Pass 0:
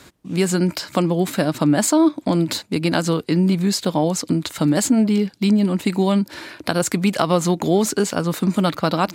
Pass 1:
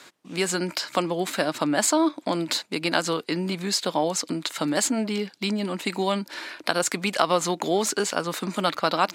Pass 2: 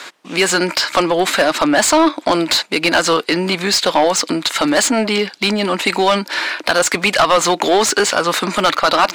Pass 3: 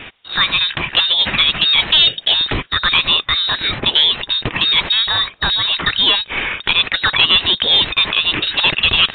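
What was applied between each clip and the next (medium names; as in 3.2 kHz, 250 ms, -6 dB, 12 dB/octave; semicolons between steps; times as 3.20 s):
frequency weighting A; trim -1 dB
overdrive pedal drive 24 dB, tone 4.2 kHz, clips at -1.5 dBFS
frequency inversion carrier 4 kHz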